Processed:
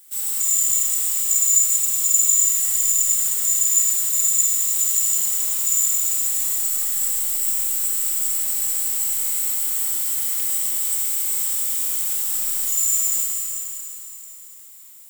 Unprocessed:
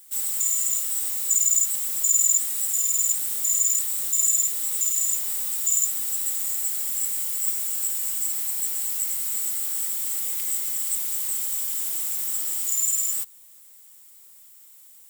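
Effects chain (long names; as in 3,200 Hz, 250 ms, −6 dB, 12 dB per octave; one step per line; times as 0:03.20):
four-comb reverb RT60 3.4 s, combs from 27 ms, DRR −2.5 dB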